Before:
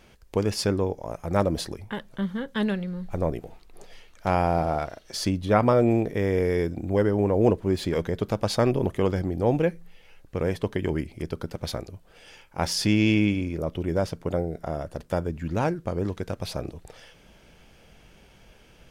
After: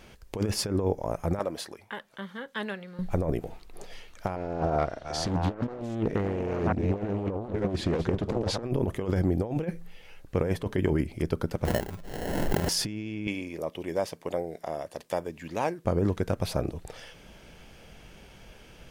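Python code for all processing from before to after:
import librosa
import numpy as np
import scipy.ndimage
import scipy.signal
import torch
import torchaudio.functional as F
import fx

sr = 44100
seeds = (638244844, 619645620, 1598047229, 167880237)

y = fx.chain(x, sr, fx.highpass(hz=1300.0, slope=6),
    fx.high_shelf(hz=4100.0, db=-6.5), at=(1.39, 2.99))
y = fx.chain(y, sr, fx.reverse_delay(ms=592, wet_db=-11.5),
    fx.lowpass(hz=6800.0, slope=12),
    fx.doppler_dist(depth_ms=0.94), at=(4.36, 8.63))
y = fx.chain(y, sr, fx.comb(ms=4.9, depth=0.3),
    fx.sample_hold(seeds[0], rate_hz=1200.0, jitter_pct=0),
    fx.pre_swell(db_per_s=36.0), at=(11.65, 12.69))
y = fx.chain(y, sr, fx.highpass(hz=880.0, slope=6),
    fx.peak_eq(hz=1400.0, db=-12.5, octaves=0.23), at=(13.27, 15.85))
y = fx.over_compress(y, sr, threshold_db=-26.0, ratio=-0.5)
y = fx.dynamic_eq(y, sr, hz=4200.0, q=0.72, threshold_db=-46.0, ratio=4.0, max_db=-5)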